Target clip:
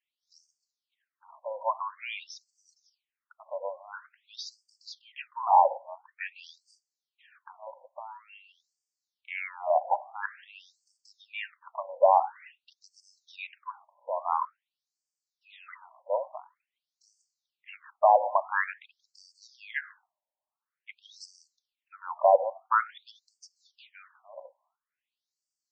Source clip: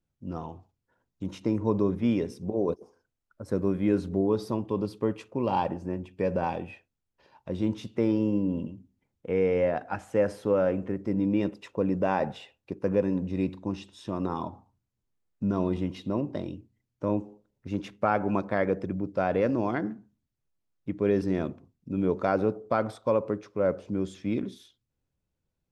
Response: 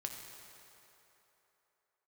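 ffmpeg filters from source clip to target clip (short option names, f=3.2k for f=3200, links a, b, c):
-af "afftfilt=real='re*between(b*sr/1024,720*pow(6400/720,0.5+0.5*sin(2*PI*0.48*pts/sr))/1.41,720*pow(6400/720,0.5+0.5*sin(2*PI*0.48*pts/sr))*1.41)':imag='im*between(b*sr/1024,720*pow(6400/720,0.5+0.5*sin(2*PI*0.48*pts/sr))/1.41,720*pow(6400/720,0.5+0.5*sin(2*PI*0.48*pts/sr))*1.41)':win_size=1024:overlap=0.75,volume=8.5dB"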